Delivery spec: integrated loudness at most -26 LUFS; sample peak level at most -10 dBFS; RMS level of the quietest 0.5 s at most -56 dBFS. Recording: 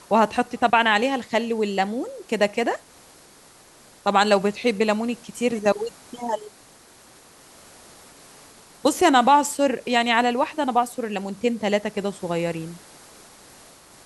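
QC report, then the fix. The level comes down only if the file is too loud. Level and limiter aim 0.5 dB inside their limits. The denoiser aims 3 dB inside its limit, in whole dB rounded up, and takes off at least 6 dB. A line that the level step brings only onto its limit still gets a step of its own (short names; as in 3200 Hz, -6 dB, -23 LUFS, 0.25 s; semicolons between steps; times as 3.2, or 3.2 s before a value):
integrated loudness -22.5 LUFS: fail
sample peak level -5.5 dBFS: fail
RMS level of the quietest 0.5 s -51 dBFS: fail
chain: denoiser 6 dB, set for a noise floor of -51 dBFS; gain -4 dB; limiter -10.5 dBFS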